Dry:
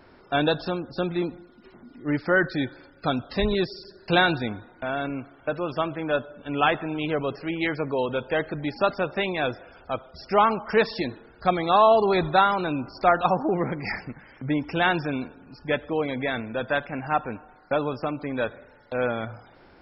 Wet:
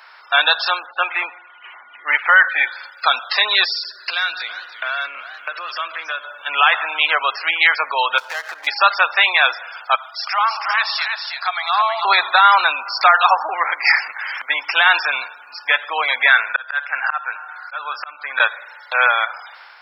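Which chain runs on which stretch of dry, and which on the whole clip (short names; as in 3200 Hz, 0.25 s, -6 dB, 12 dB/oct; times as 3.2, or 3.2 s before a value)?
0.86–2.66 rippled Chebyshev low-pass 3100 Hz, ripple 3 dB + high shelf 2300 Hz +8 dB
3.74–6.25 bell 850 Hz -11.5 dB 0.41 oct + compressor 16:1, threshold -32 dBFS + warbling echo 0.327 s, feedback 41%, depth 186 cents, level -14 dB
8.18–8.67 median filter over 15 samples + compressor 16:1, threshold -32 dBFS
9.95–12.05 Chebyshev high-pass 660 Hz, order 5 + compressor 2:1, threshold -40 dBFS + echo 0.321 s -5.5 dB
12.82–14.62 low shelf 450 Hz -4.5 dB + upward compressor, threshold -34 dBFS
16.28–18.4 bell 1500 Hz +9 dB 0.51 oct + auto swell 0.523 s
whole clip: HPF 990 Hz 24 dB/oct; AGC gain up to 4.5 dB; maximiser +15.5 dB; gain -1 dB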